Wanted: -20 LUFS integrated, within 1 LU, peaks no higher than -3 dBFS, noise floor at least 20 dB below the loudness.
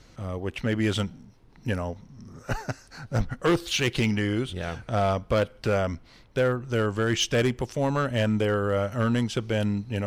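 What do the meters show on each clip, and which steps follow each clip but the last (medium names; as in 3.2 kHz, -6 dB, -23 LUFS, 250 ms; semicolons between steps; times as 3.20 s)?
clipped samples 1.1%; clipping level -17.0 dBFS; loudness -27.0 LUFS; peak level -17.0 dBFS; loudness target -20.0 LUFS
-> clip repair -17 dBFS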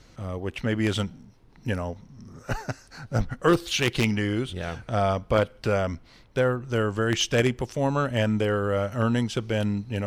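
clipped samples 0.0%; loudness -26.0 LUFS; peak level -8.0 dBFS; loudness target -20.0 LUFS
-> trim +6 dB; peak limiter -3 dBFS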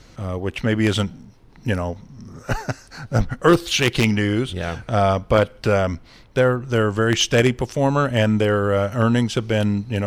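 loudness -20.5 LUFS; peak level -3.0 dBFS; noise floor -47 dBFS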